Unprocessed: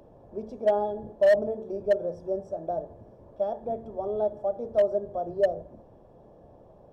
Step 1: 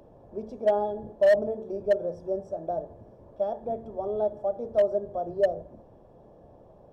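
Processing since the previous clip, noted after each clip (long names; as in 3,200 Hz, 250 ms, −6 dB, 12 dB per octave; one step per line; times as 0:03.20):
no processing that can be heard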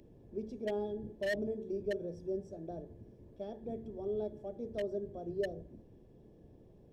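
flat-topped bell 880 Hz −15 dB
level −2.5 dB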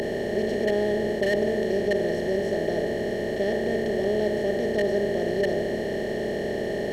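compressor on every frequency bin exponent 0.2
level +5.5 dB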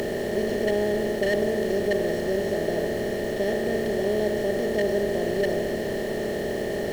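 background noise pink −43 dBFS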